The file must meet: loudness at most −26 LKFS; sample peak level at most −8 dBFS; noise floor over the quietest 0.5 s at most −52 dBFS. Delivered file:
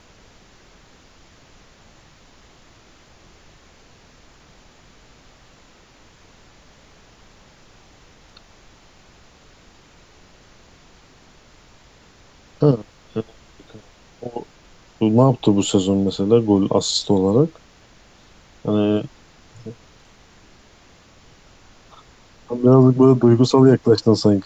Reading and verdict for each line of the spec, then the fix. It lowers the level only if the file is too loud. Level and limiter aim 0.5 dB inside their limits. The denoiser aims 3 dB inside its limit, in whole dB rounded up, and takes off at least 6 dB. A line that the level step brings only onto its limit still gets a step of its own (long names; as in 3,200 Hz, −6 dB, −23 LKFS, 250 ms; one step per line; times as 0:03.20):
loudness −17.0 LKFS: out of spec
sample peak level −3.0 dBFS: out of spec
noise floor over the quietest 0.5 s −50 dBFS: out of spec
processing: level −9.5 dB